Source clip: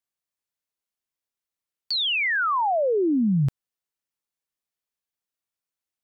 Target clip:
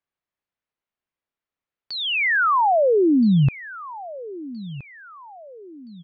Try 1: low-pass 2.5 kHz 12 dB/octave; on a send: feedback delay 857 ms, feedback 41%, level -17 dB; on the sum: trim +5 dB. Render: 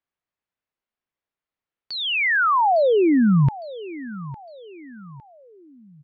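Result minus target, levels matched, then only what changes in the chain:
echo 464 ms early
change: feedback delay 1321 ms, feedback 41%, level -17 dB

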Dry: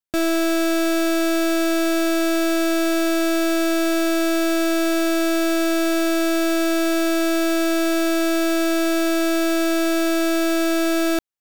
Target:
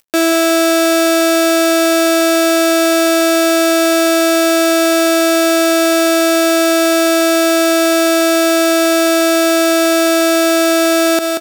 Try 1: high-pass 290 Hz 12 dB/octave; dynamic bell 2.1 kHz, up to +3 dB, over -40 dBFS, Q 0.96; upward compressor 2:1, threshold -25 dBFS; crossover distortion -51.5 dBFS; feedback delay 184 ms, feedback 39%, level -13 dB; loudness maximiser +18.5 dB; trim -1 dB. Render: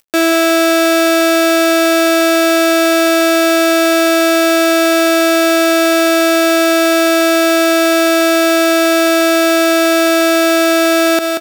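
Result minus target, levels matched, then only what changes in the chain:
8 kHz band -2.5 dB
change: dynamic bell 8.1 kHz, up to +3 dB, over -40 dBFS, Q 0.96

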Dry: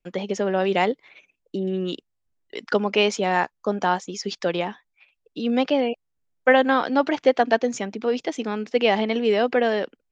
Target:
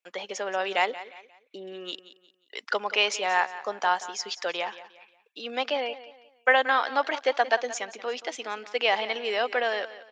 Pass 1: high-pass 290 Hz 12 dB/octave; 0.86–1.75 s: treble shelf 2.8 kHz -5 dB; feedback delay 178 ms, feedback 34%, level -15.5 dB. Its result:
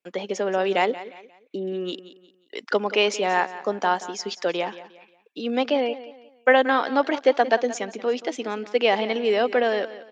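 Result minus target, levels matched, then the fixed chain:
250 Hz band +10.5 dB
high-pass 770 Hz 12 dB/octave; 0.86–1.75 s: treble shelf 2.8 kHz -5 dB; feedback delay 178 ms, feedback 34%, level -15.5 dB

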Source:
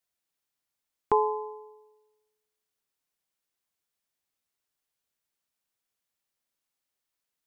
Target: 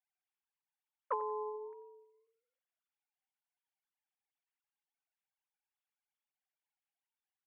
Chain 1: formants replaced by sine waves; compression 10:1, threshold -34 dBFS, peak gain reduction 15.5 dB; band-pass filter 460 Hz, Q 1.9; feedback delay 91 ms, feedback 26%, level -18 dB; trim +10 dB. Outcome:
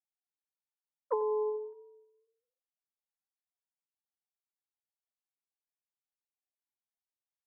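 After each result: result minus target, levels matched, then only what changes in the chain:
compression: peak gain reduction -10 dB; 500 Hz band +2.5 dB
change: compression 10:1, threshold -45 dBFS, peak gain reduction 25.5 dB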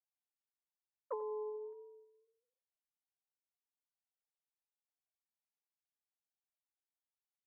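500 Hz band +3.0 dB
remove: band-pass filter 460 Hz, Q 1.9

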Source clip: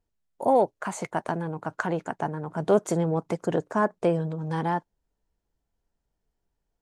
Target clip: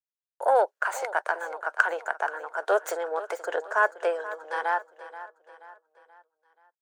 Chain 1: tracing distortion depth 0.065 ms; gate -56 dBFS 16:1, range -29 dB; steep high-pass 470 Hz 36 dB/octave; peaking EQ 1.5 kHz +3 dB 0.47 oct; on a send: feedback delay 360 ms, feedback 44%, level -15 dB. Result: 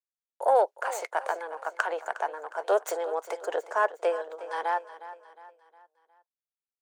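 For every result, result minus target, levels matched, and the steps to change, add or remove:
2 kHz band -5.5 dB; echo 120 ms early
change: peaking EQ 1.5 kHz +11.5 dB 0.47 oct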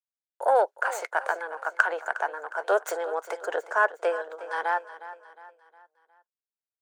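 echo 120 ms early
change: feedback delay 480 ms, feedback 44%, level -15 dB

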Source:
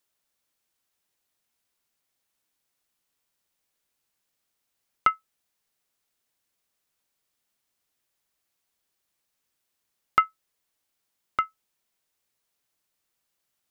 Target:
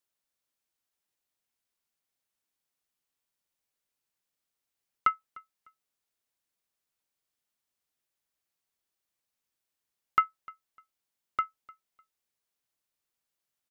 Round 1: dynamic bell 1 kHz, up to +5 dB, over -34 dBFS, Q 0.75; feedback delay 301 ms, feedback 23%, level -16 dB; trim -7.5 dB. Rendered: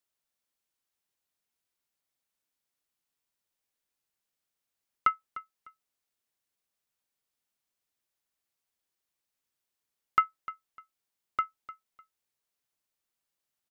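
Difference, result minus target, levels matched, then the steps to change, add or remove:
echo-to-direct +7 dB
change: feedback delay 301 ms, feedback 23%, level -23 dB

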